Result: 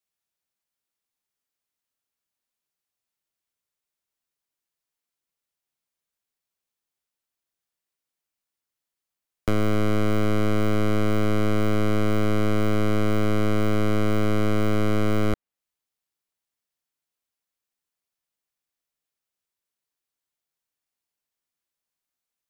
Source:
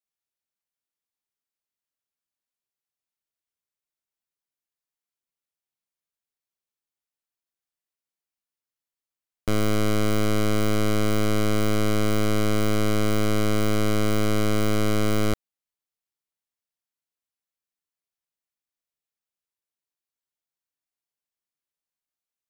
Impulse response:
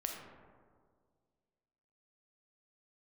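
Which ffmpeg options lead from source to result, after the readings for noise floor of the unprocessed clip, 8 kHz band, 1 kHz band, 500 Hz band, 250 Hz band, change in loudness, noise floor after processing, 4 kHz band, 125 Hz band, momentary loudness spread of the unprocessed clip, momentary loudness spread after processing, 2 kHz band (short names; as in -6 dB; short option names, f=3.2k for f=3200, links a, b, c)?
under -85 dBFS, -9.0 dB, 0.0 dB, 0.0 dB, +0.5 dB, 0.0 dB, under -85 dBFS, -5.0 dB, +1.0 dB, 1 LU, 1 LU, -1.0 dB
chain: -filter_complex "[0:a]acrossover=split=330|2900[a][b][c];[a]acompressor=threshold=-24dB:ratio=4[d];[b]acompressor=threshold=-29dB:ratio=4[e];[c]acompressor=threshold=-48dB:ratio=4[f];[d][e][f]amix=inputs=3:normalize=0,volume=4dB"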